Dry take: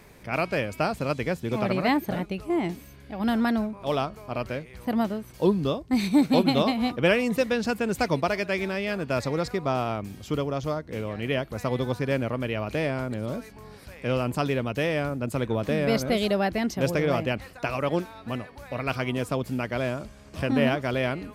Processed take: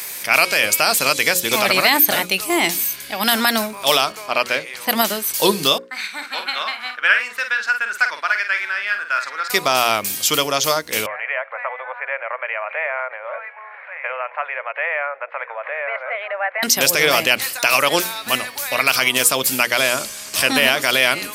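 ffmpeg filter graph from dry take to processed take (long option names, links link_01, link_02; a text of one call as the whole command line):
ffmpeg -i in.wav -filter_complex "[0:a]asettb=1/sr,asplit=3[link_01][link_02][link_03];[link_01]atrim=end=4.124[link_04];[link_02]atrim=start=4.12:end=4.89,asetpts=PTS-STARTPTS,afade=type=in:duration=0.004:curve=qsin,afade=type=out:start_time=0.766:duration=0.004:curve=qsin,highpass=frequency=190:poles=1,aemphasis=mode=reproduction:type=50fm[link_05];[link_03]atrim=start=4.886[link_06];[link_04][link_05]acrossfade=duration=0.004:curve1=hsin:curve2=qsin[link_07];[link_07][link_06]acrossfade=duration=0.004:curve1=qsin:curve2=hsin,asettb=1/sr,asplit=3[link_08][link_09][link_10];[link_08]atrim=end=5.784[link_11];[link_09]atrim=start=5.78:end=9.5,asetpts=PTS-STARTPTS,afade=type=in:duration=0.004:curve=qsin,afade=type=out:start_time=3.716:duration=0.004:curve=qsin,bandpass=frequency=1500:width_type=q:width=4.6,asplit=2[link_12][link_13];[link_13]adelay=49,volume=-8dB[link_14];[link_12][link_14]amix=inputs=2:normalize=0,atrim=end_sample=164052[link_15];[link_10]atrim=start=9.496[link_16];[link_11][link_15]acrossfade=duration=0.004:curve1=hsin:curve2=qsin[link_17];[link_17][link_16]acrossfade=duration=0.004:curve1=qsin:curve2=hsin,asettb=1/sr,asplit=3[link_18][link_19][link_20];[link_18]atrim=end=11.064[link_21];[link_19]atrim=start=11.06:end=16.63,asetpts=PTS-STARTPTS,afade=type=in:duration=0.004:curve=qsin,afade=type=out:start_time=5.566:duration=0.004:curve=qsin,acompressor=threshold=-28dB:ratio=6:attack=3.2:release=140:knee=1:detection=peak,asuperpass=centerf=1100:order=12:qfactor=0.64[link_22];[link_20]atrim=start=16.626[link_23];[link_21][link_22]acrossfade=duration=0.004:curve1=hsin:curve2=qsin[link_24];[link_24][link_23]acrossfade=duration=0.004:curve1=qsin:curve2=hsin,aderivative,bandreject=frequency=60:width_type=h:width=6,bandreject=frequency=120:width_type=h:width=6,bandreject=frequency=180:width_type=h:width=6,bandreject=frequency=240:width_type=h:width=6,bandreject=frequency=300:width_type=h:width=6,bandreject=frequency=360:width_type=h:width=6,bandreject=frequency=420:width_type=h:width=6,bandreject=frequency=480:width_type=h:width=6,bandreject=frequency=540:width_type=h:width=6,alimiter=level_in=31.5dB:limit=-1dB:release=50:level=0:latency=1,volume=-1dB" out.wav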